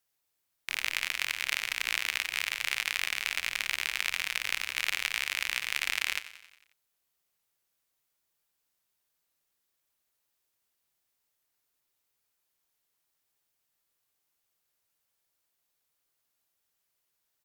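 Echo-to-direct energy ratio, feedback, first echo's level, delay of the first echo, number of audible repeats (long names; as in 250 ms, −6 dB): −13.0 dB, 59%, −15.0 dB, 90 ms, 5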